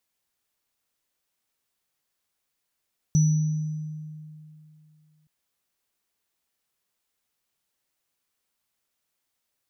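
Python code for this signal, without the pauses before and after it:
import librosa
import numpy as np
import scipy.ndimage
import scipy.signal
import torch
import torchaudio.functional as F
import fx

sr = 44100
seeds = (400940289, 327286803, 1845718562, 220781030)

y = fx.additive_free(sr, length_s=2.12, hz=154.0, level_db=-15, upper_db=(-13.0,), decay_s=2.67, upper_decays_s=(1.12,), upper_hz=(5930.0,))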